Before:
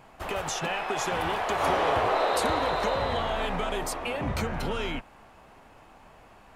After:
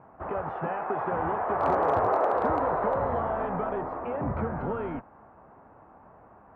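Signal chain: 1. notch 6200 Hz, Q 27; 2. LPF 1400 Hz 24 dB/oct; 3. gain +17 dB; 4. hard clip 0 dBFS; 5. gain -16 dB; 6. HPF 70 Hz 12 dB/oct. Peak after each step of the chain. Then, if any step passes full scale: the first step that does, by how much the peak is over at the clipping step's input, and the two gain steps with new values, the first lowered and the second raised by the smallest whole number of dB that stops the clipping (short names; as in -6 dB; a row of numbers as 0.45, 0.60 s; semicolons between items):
-13.5, -14.0, +3.0, 0.0, -16.0, -13.5 dBFS; step 3, 3.0 dB; step 3 +14 dB, step 5 -13 dB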